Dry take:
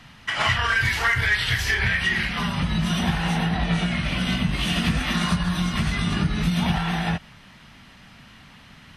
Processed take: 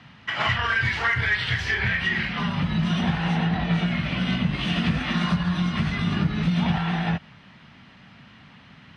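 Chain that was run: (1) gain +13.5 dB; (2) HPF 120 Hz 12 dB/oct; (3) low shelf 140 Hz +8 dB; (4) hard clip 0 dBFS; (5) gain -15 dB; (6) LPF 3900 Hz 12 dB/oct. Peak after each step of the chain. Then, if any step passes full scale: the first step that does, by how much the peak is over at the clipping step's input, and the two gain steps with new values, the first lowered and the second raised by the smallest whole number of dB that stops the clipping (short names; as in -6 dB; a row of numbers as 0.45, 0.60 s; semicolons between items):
+1.0, +3.0, +4.5, 0.0, -15.0, -14.5 dBFS; step 1, 4.5 dB; step 1 +8.5 dB, step 5 -10 dB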